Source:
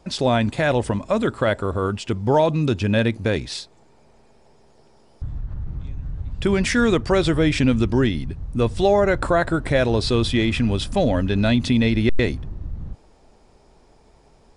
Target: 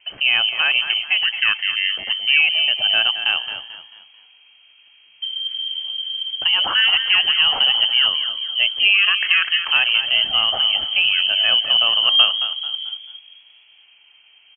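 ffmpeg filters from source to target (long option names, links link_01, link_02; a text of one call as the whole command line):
ffmpeg -i in.wav -filter_complex "[0:a]lowpass=frequency=2700:width_type=q:width=0.5098,lowpass=frequency=2700:width_type=q:width=0.6013,lowpass=frequency=2700:width_type=q:width=0.9,lowpass=frequency=2700:width_type=q:width=2.563,afreqshift=-3200,asplit=5[link_01][link_02][link_03][link_04][link_05];[link_02]adelay=220,afreqshift=49,volume=-10dB[link_06];[link_03]adelay=440,afreqshift=98,volume=-18.4dB[link_07];[link_04]adelay=660,afreqshift=147,volume=-26.8dB[link_08];[link_05]adelay=880,afreqshift=196,volume=-35.2dB[link_09];[link_01][link_06][link_07][link_08][link_09]amix=inputs=5:normalize=0,volume=1dB" out.wav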